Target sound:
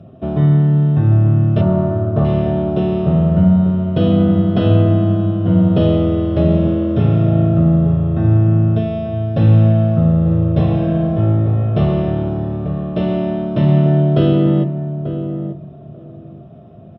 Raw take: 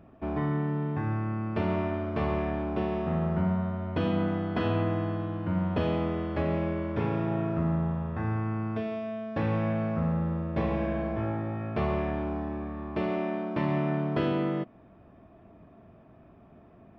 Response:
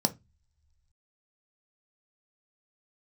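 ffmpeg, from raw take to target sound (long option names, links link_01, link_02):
-filter_complex "[0:a]asettb=1/sr,asplit=3[link_01][link_02][link_03];[link_01]atrim=end=1.614[link_04];[link_02]atrim=start=1.61:end=2.25,asetpts=PTS-STARTPTS,afade=type=in:duration=0.004:curve=qsin,afade=type=out:start_time=0.636:duration=0.004:curve=qsin,highshelf=frequency=1800:width_type=q:width=1.5:gain=-10.5[link_05];[link_03]atrim=start=2.246[link_06];[link_04][link_05]acrossfade=duration=0.004:curve1=hsin:curve2=qsin[link_07];[link_07][link_06]acrossfade=duration=0.004:curve1=qsin:curve2=hsin,asplit=2[link_08][link_09];[link_09]adelay=889,lowpass=frequency=980:poles=1,volume=-9dB,asplit=2[link_10][link_11];[link_11]adelay=889,lowpass=frequency=980:poles=1,volume=0.18,asplit=2[link_12][link_13];[link_13]adelay=889,lowpass=frequency=980:poles=1,volume=0.18[link_14];[link_08][link_10][link_12][link_14]amix=inputs=4:normalize=0[link_15];[1:a]atrim=start_sample=2205,asetrate=29988,aresample=44100[link_16];[link_15][link_16]afir=irnorm=-1:irlink=0,volume=-3dB"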